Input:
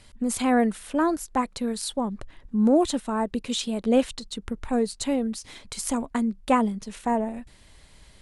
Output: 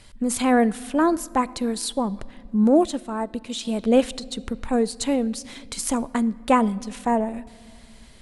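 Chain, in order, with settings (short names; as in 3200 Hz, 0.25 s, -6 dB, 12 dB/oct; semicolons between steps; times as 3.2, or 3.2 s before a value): on a send at -17.5 dB: reverb RT60 2.0 s, pre-delay 6 ms; 2.64–3.65 on the sum: upward expander 1.5:1, over -29 dBFS; gain +3 dB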